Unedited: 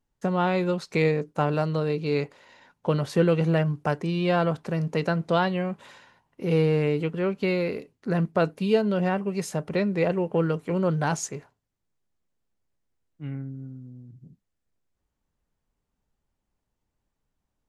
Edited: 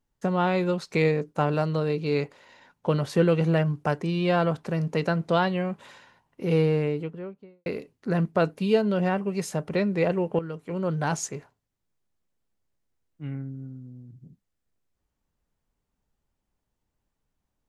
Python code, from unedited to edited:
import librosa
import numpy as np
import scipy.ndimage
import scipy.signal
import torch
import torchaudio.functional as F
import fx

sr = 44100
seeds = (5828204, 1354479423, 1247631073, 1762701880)

y = fx.studio_fade_out(x, sr, start_s=6.51, length_s=1.15)
y = fx.edit(y, sr, fx.fade_in_from(start_s=10.39, length_s=0.82, floor_db=-12.5), tone=tone)